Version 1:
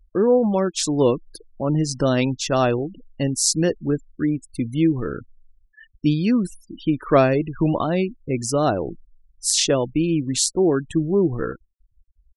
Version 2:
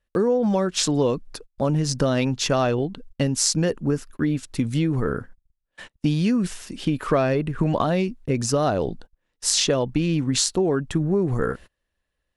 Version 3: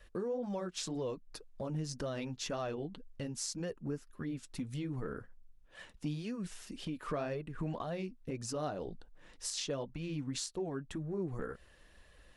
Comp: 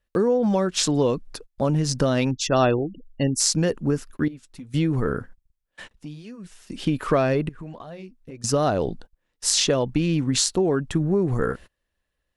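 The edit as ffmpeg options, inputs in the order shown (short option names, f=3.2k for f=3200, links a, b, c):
-filter_complex "[2:a]asplit=3[a][b][c];[1:a]asplit=5[d][e][f][g][h];[d]atrim=end=2.312[i];[0:a]atrim=start=2.308:end=3.402[j];[e]atrim=start=3.398:end=4.282[k];[a]atrim=start=4.278:end=4.742[l];[f]atrim=start=4.738:end=5.912[m];[b]atrim=start=5.908:end=6.702[n];[g]atrim=start=6.698:end=7.492[o];[c]atrim=start=7.488:end=8.442[p];[h]atrim=start=8.438[q];[i][j]acrossfade=d=0.004:c1=hsin:c2=hsin[r];[r][k]acrossfade=d=0.004:c1=hsin:c2=hsin[s];[s][l]acrossfade=d=0.004:c1=hsin:c2=hsin[t];[t][m]acrossfade=d=0.004:c1=hsin:c2=hsin[u];[u][n]acrossfade=d=0.004:c1=hsin:c2=hsin[v];[v][o]acrossfade=d=0.004:c1=hsin:c2=hsin[w];[w][p]acrossfade=d=0.004:c1=hsin:c2=hsin[x];[x][q]acrossfade=d=0.004:c1=hsin:c2=hsin"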